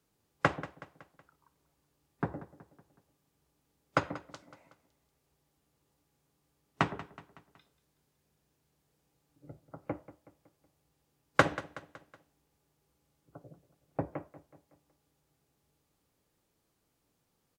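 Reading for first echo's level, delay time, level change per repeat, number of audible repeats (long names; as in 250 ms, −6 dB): −16.5 dB, 186 ms, −6.0 dB, 3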